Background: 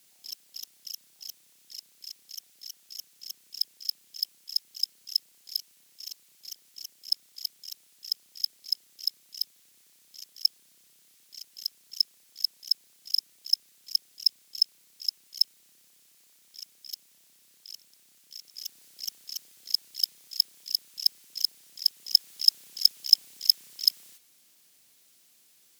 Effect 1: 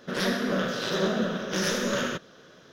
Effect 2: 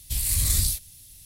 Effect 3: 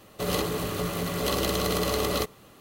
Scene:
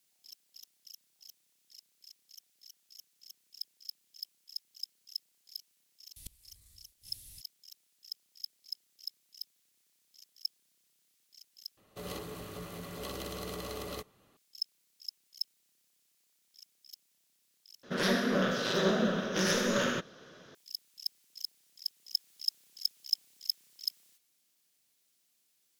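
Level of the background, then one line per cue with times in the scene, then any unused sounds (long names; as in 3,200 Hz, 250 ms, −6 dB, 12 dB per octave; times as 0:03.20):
background −12.5 dB
0:06.16: mix in 2 −4 dB + gate with flip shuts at −23 dBFS, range −36 dB
0:11.77: overwrite with 3 −14 dB
0:17.83: overwrite with 1 −2 dB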